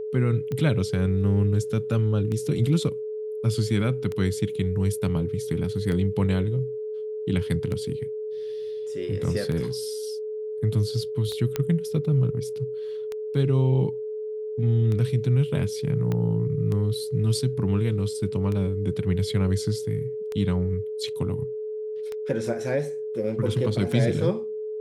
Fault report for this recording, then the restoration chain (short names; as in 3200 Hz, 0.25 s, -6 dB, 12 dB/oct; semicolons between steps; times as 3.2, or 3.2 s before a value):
tick 33 1/3 rpm -19 dBFS
tone 430 Hz -29 dBFS
11.56 pop -12 dBFS
16.12 pop -16 dBFS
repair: de-click; notch 430 Hz, Q 30